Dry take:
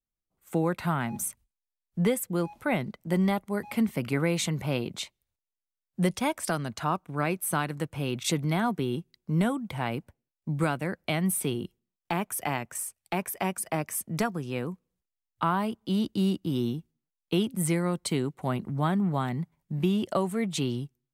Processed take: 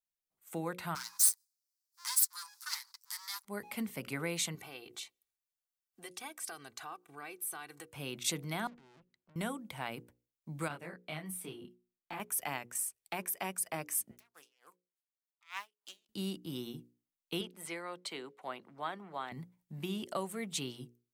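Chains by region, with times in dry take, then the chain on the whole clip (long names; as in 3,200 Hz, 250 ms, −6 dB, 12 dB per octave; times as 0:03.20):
0:00.95–0:03.45: lower of the sound and its delayed copy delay 8.8 ms + Butterworth high-pass 910 Hz 96 dB per octave + high shelf with overshoot 3,700 Hz +9.5 dB, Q 3
0:04.55–0:07.88: low-shelf EQ 220 Hz −9.5 dB + downward compressor 2 to 1, threshold −41 dBFS + comb filter 2.6 ms, depth 68%
0:08.67–0:09.36: compressor whose output falls as the input rises −33 dBFS + low-pass filter 2,000 Hz + tube saturation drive 49 dB, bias 0.5
0:10.68–0:12.20: high-shelf EQ 3,900 Hz −8 dB + micro pitch shift up and down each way 22 cents
0:14.11–0:16.09: phase distortion by the signal itself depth 0.28 ms + high-pass filter 1,000 Hz + tremolo with a sine in dB 3.4 Hz, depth 33 dB
0:17.41–0:19.32: high-pass filter 150 Hz + three-way crossover with the lows and the highs turned down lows −15 dB, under 350 Hz, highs −15 dB, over 5,000 Hz
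whole clip: spectral tilt +2 dB per octave; mains-hum notches 60/120/180/240/300/360/420/480/540 Hz; level −8 dB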